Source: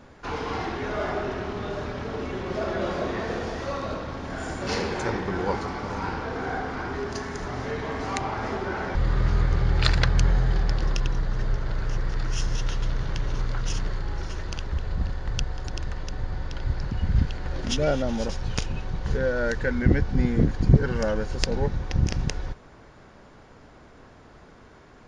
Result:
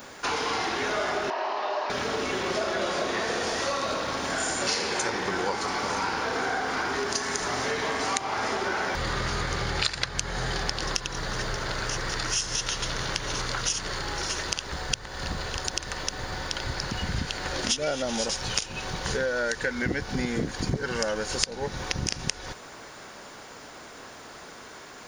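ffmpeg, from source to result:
-filter_complex "[0:a]asettb=1/sr,asplit=3[s0][s1][s2];[s0]atrim=end=1.304[s3];[s1]atrim=start=1.3:end=1.9,asetpts=PTS-STARTPTS,afade=t=in:d=0.004:c=qsin,afade=t=out:st=0.596:d=0.004:c=qsin,highpass=f=400:w=0.5412,highpass=f=400:w=1.3066,equalizer=f=440:t=q:w=4:g=-9,equalizer=f=670:t=q:w=4:g=4,equalizer=f=950:t=q:w=4:g=8,equalizer=f=1400:t=q:w=4:g=-8,equalizer=f=2200:t=q:w=4:g=-6,equalizer=f=3500:t=q:w=4:g=-10,lowpass=f=4300:w=0.5412,lowpass=f=4300:w=1.3066[s4];[s2]atrim=start=1.896[s5];[s3][s4]acrossfade=d=0.004:c1=hsin:c2=qsin[s6];[s6][s5]acrossfade=d=0.004:c1=qsin:c2=hsin,asplit=3[s7][s8][s9];[s7]atrim=end=14.762[s10];[s8]atrim=start=14.758:end=15.572,asetpts=PTS-STARTPTS,areverse[s11];[s9]atrim=start=15.568[s12];[s10][s11]acrossfade=d=0.004:c1=hsin:c2=hsin[s13];[s13][s12]acrossfade=d=0.004:c1=hsin:c2=hsin,aemphasis=mode=production:type=riaa,acompressor=threshold=0.0224:ratio=5,volume=2.51"

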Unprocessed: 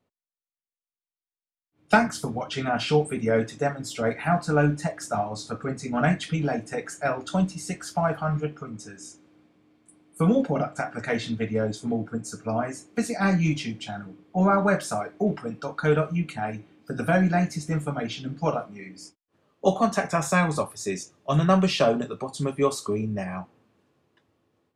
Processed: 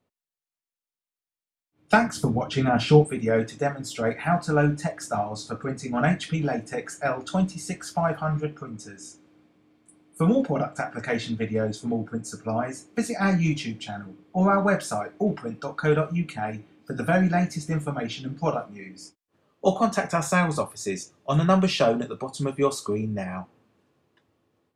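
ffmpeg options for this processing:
-filter_complex "[0:a]asettb=1/sr,asplit=3[s0][s1][s2];[s0]atrim=end=2.164[s3];[s1]atrim=start=2.16:end=3.04,asetpts=PTS-STARTPTS,afade=t=in:d=0.004:c=qsin,afade=t=out:st=0.876:d=0.004:c=qsin,lowshelf=f=440:g=9[s4];[s2]atrim=start=3.036[s5];[s3][s4]acrossfade=d=0.004:c1=hsin:c2=qsin[s6];[s6][s5]acrossfade=d=0.004:c1=qsin:c2=hsin"

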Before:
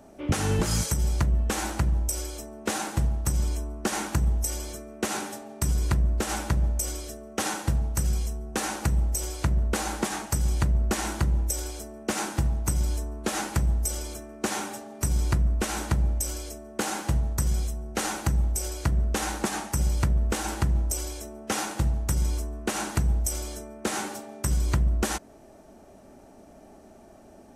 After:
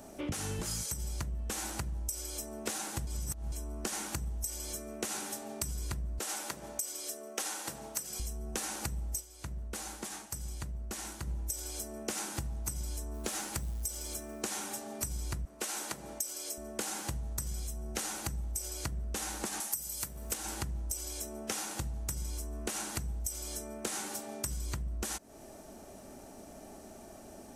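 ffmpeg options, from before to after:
-filter_complex "[0:a]asettb=1/sr,asplit=3[s0][s1][s2];[s0]atrim=end=6.194[s3];[s1]atrim=start=6.19:end=8.2,asetpts=PTS-STARTPTS,afade=t=in:d=0.004:c=qsin,afade=t=out:st=2.006:d=0.004:c=qsin,highpass=350[s4];[s2]atrim=start=8.196[s5];[s3][s4]acrossfade=d=0.004:c1=hsin:c2=qsin[s6];[s6][s5]acrossfade=d=0.004:c1=qsin:c2=hsin,asettb=1/sr,asplit=3[s7][s8][s9];[s7]atrim=end=13.144[s10];[s8]atrim=start=13.14:end=14.42,asetpts=PTS-STARTPTS,afade=t=in:d=0.004:c=qsin,afade=t=out:st=1.276:d=0.004:c=qsin,acrusher=bits=8:mode=log:mix=0:aa=0.000001[s11];[s9]atrim=start=14.416[s12];[s10][s11]acrossfade=d=0.004:c1=hsin:c2=qsin[s13];[s13][s12]acrossfade=d=0.004:c1=qsin:c2=hsin,asettb=1/sr,asplit=3[s14][s15][s16];[s14]atrim=end=15.454[s17];[s15]atrim=start=15.45:end=16.58,asetpts=PTS-STARTPTS,afade=t=in:d=0.004:c=qsin,afade=t=out:st=1.126:d=0.004:c=qsin,highpass=330[s18];[s16]atrim=start=16.576[s19];[s17][s18]acrossfade=d=0.004:c1=hsin:c2=qsin[s20];[s20][s19]acrossfade=d=0.004:c1=qsin:c2=hsin,asettb=1/sr,asplit=3[s21][s22][s23];[s21]atrim=end=19.604[s24];[s22]atrim=start=19.6:end=20.34,asetpts=PTS-STARTPTS,afade=t=in:d=0.004:c=qsin,afade=t=out:st=0.736:d=0.004:c=qsin,aemphasis=mode=production:type=bsi[s25];[s23]atrim=start=20.336[s26];[s24][s25]acrossfade=d=0.004:c1=hsin:c2=qsin[s27];[s27][s26]acrossfade=d=0.004:c1=qsin:c2=hsin,asplit=5[s28][s29][s30][s31][s32];[s28]atrim=end=3.072[s33];[s29]atrim=start=3.068:end=3.522,asetpts=PTS-STARTPTS,areverse[s34];[s30]atrim=start=3.518:end=9.4,asetpts=PTS-STARTPTS,afade=t=out:st=5.672:d=0.21:c=exp:silence=0.177828[s35];[s31]atrim=start=9.4:end=11.1,asetpts=PTS-STARTPTS,volume=0.178[s36];[s32]atrim=start=11.1,asetpts=PTS-STARTPTS,afade=t=in:d=0.21:c=exp:silence=0.177828[s37];[s33][s34]acrossfade=d=0.004:c1=hsin:c2=hsin[s38];[s35][s36][s37]concat=n=3:v=0:a=1[s39];[s38][s39]acrossfade=d=0.004:c1=hsin:c2=hsin,highshelf=f=3900:g=10.5,acompressor=threshold=0.0178:ratio=6"

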